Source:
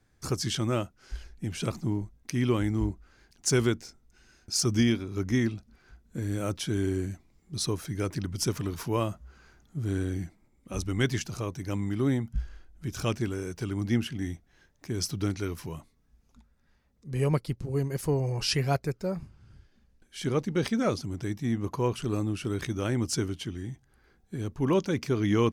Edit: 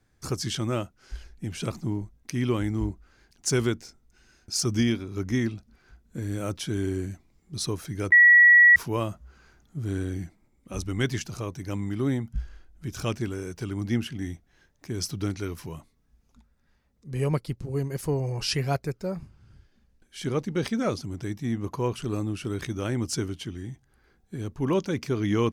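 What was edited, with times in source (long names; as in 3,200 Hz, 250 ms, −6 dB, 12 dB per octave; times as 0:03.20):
0:08.12–0:08.76: beep over 1,930 Hz −11 dBFS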